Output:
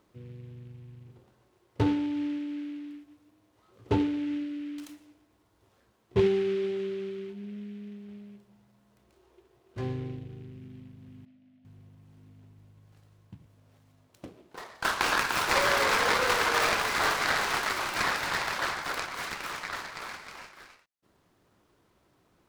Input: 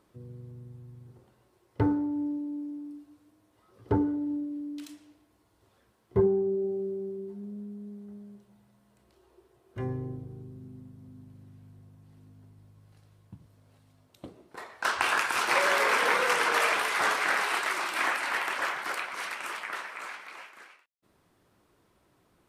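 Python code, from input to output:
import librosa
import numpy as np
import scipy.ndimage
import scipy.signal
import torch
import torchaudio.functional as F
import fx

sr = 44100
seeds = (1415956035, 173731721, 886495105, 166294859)

y = fx.double_bandpass(x, sr, hz=400.0, octaves=1.3, at=(11.25, 11.65))
y = fx.noise_mod_delay(y, sr, seeds[0], noise_hz=2200.0, depth_ms=0.046)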